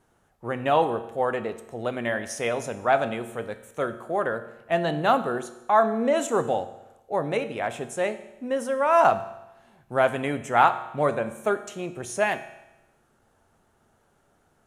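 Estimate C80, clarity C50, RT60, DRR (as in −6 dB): 14.5 dB, 13.0 dB, 0.95 s, 9.5 dB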